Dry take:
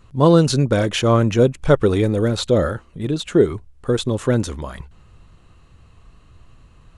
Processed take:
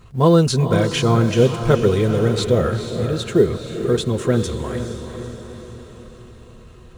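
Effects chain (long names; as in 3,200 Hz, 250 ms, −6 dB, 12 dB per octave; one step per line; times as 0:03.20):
mu-law and A-law mismatch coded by mu
notch comb filter 290 Hz
feedback delay with all-pass diffusion 462 ms, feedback 53%, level −8 dB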